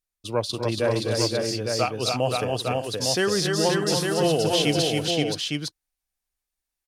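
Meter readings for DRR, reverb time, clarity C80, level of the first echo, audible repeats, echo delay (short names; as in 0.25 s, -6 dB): none, none, none, -12.5 dB, 5, 0.248 s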